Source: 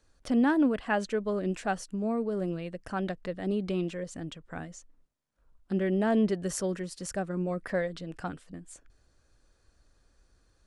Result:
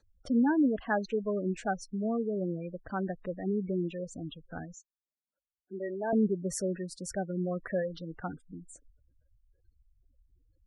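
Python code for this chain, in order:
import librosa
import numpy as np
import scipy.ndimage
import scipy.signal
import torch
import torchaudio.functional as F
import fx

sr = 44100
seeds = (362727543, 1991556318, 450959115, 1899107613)

y = fx.spec_gate(x, sr, threshold_db=-15, keep='strong')
y = fx.highpass(y, sr, hz=470.0, slope=12, at=(4.74, 6.13))
y = F.gain(torch.from_numpy(y), -1.0).numpy()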